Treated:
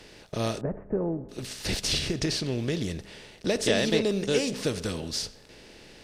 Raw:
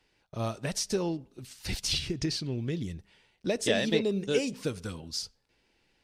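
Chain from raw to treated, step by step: spectral levelling over time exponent 0.6; 0.61–1.29 s: Gaussian low-pass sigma 7.5 samples

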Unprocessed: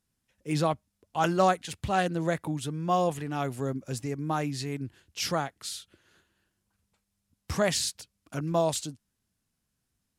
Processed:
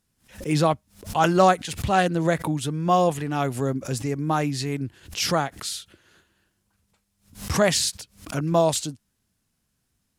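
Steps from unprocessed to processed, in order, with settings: swell ahead of each attack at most 150 dB/s; trim +6 dB

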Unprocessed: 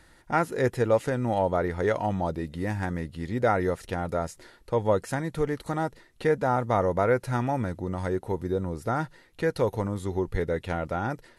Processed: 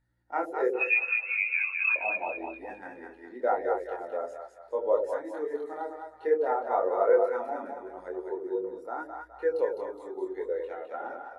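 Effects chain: high-pass 330 Hz 24 dB/octave; hum 60 Hz, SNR 26 dB; chorus voices 2, 0.81 Hz, delay 24 ms, depth 3.4 ms; 0.73–1.96 s: frequency inversion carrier 3 kHz; two-band feedback delay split 570 Hz, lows 85 ms, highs 208 ms, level -3 dB; spectral contrast expander 1.5:1

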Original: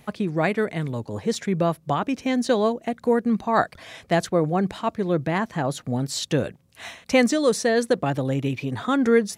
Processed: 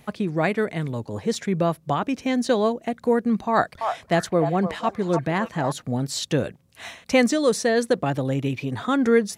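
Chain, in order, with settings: 3.51–5.72 s: repeats whose band climbs or falls 299 ms, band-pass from 870 Hz, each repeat 1.4 oct, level -3.5 dB

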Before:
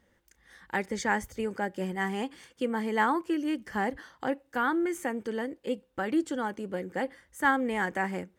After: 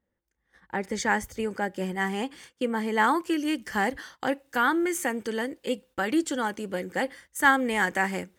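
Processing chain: gate -53 dBFS, range -14 dB; treble shelf 2 kHz -10.5 dB, from 0.83 s +3 dB, from 3.04 s +9.5 dB; trim +2 dB

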